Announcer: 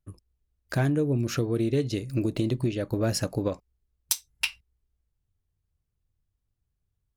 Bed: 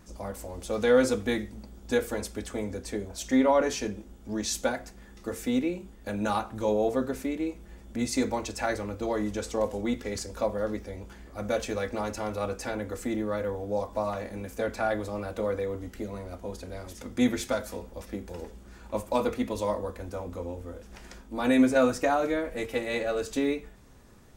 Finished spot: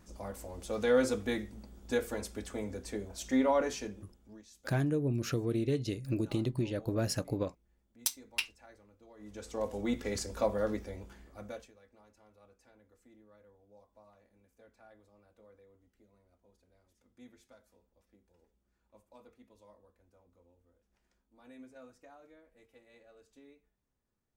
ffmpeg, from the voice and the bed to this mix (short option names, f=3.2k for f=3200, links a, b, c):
-filter_complex "[0:a]adelay=3950,volume=-6dB[a];[1:a]volume=20.5dB,afade=t=out:st=3.57:d=0.88:silence=0.0749894,afade=t=in:st=9.17:d=0.89:silence=0.0501187,afade=t=out:st=10.67:d=1.05:silence=0.0354813[b];[a][b]amix=inputs=2:normalize=0"